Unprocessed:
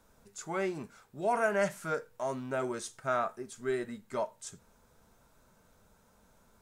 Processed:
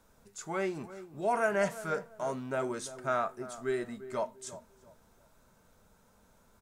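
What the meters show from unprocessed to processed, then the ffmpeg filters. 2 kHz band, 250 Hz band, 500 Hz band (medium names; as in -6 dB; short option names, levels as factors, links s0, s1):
0.0 dB, 0.0 dB, 0.0 dB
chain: -filter_complex "[0:a]asplit=2[s0][s1];[s1]adelay=344,lowpass=f=1000:p=1,volume=0.224,asplit=2[s2][s3];[s3]adelay=344,lowpass=f=1000:p=1,volume=0.31,asplit=2[s4][s5];[s5]adelay=344,lowpass=f=1000:p=1,volume=0.31[s6];[s0][s2][s4][s6]amix=inputs=4:normalize=0"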